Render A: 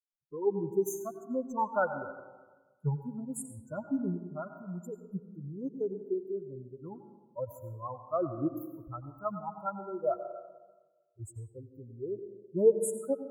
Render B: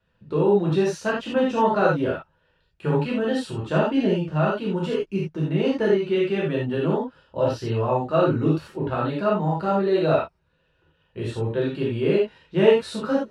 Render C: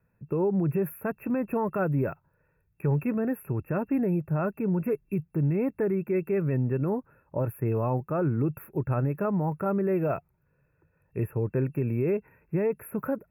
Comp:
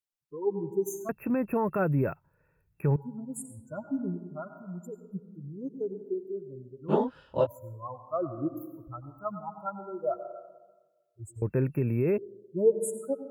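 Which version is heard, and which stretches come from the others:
A
1.09–2.96 s: from C
6.91–7.44 s: from B, crossfade 0.06 s
11.42–12.18 s: from C

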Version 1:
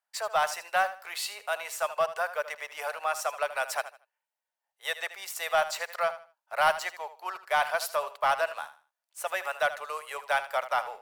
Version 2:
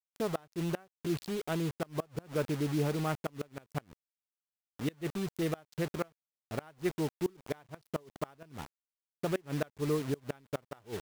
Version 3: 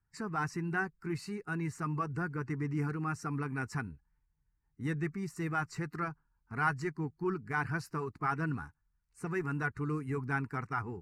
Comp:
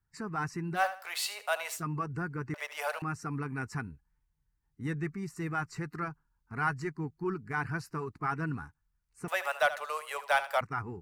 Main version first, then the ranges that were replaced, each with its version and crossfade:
3
0.78–1.78 s: from 1, crossfade 0.10 s
2.54–3.02 s: from 1
9.28–10.61 s: from 1
not used: 2

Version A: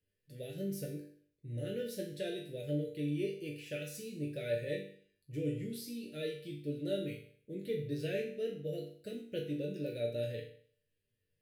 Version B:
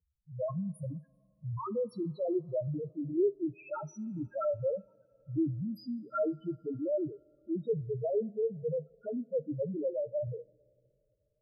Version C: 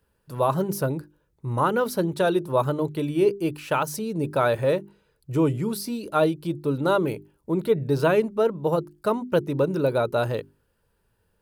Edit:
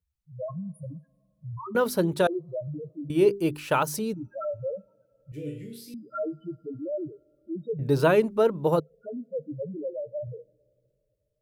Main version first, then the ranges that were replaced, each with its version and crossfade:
B
1.75–2.27 s: from C
3.10–4.14 s: from C
5.32–5.94 s: from A
7.79–8.80 s: from C

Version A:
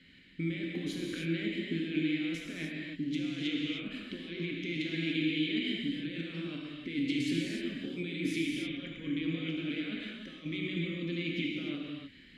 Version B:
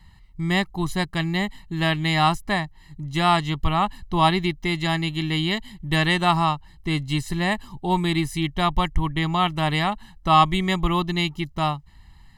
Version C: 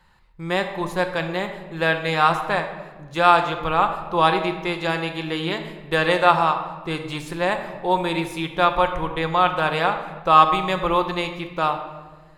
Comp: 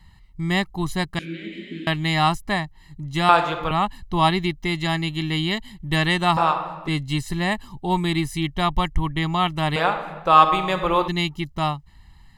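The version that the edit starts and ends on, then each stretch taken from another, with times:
B
1.19–1.87 s: from A
3.29–3.71 s: from C
6.37–6.88 s: from C
9.76–11.08 s: from C

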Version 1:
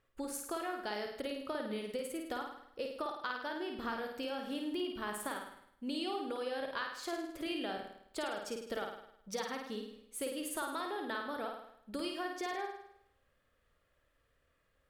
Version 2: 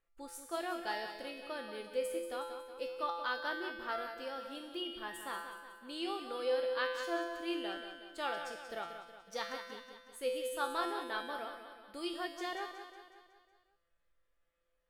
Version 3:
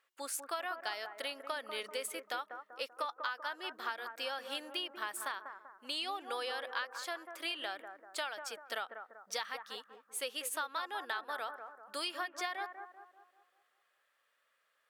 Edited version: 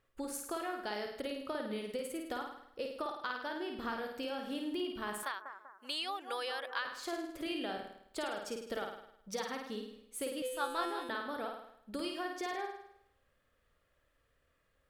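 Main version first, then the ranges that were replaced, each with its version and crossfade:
1
5.23–6.85 s: from 3
10.42–11.09 s: from 2

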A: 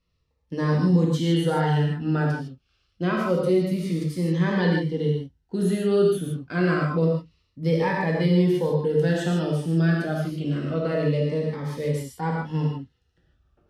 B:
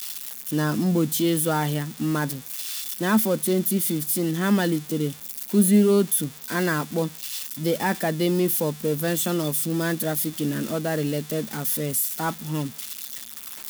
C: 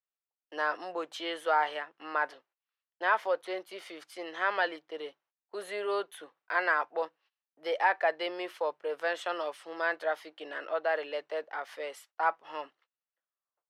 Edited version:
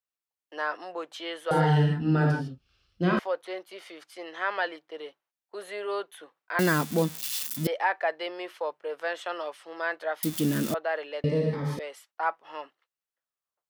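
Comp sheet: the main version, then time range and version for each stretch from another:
C
1.51–3.19 s: from A
6.59–7.67 s: from B
10.23–10.74 s: from B
11.24–11.79 s: from A

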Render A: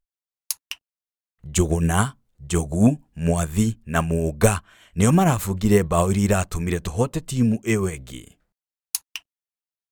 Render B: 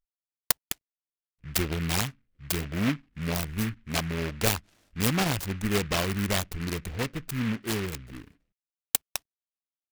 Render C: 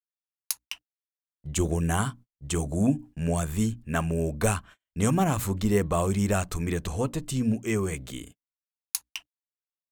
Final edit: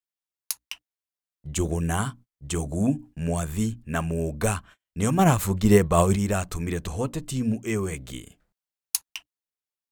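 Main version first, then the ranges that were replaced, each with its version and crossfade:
C
5.19–6.16 s: from A
8.08–9.09 s: from A
not used: B

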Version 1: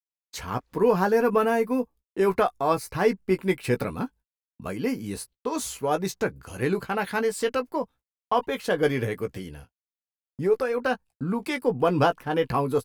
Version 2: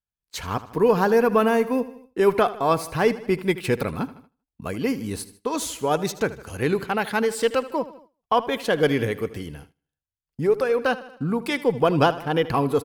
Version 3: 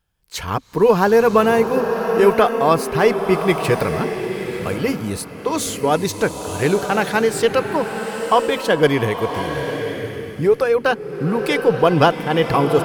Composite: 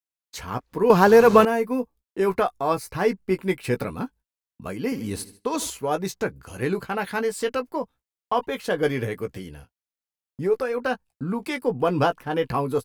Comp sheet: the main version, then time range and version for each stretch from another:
1
0.90–1.45 s: from 3
4.92–5.70 s: from 2

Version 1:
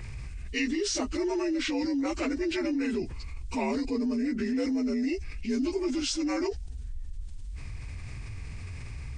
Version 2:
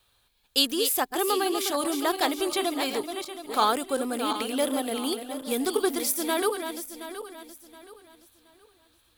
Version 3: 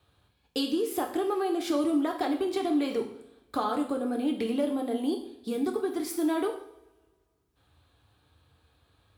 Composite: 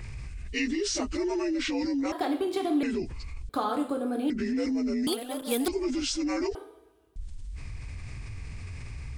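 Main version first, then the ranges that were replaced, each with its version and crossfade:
1
2.12–2.83 s: from 3
3.49–4.30 s: from 3
5.07–5.68 s: from 2
6.55–7.16 s: from 3

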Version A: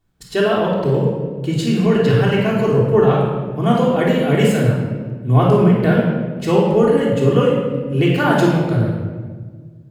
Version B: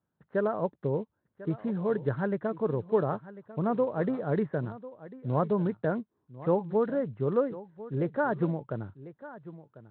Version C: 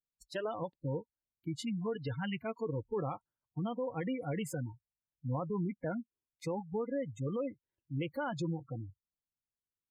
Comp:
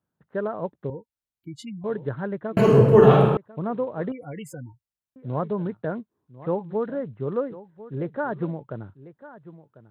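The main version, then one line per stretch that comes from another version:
B
0.90–1.84 s: from C
2.57–3.37 s: from A
4.12–5.16 s: from C

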